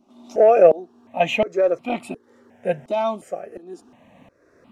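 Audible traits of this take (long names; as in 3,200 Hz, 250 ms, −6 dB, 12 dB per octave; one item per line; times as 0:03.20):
tremolo saw up 1.4 Hz, depth 85%
notches that jump at a steady rate 2.8 Hz 470–1,700 Hz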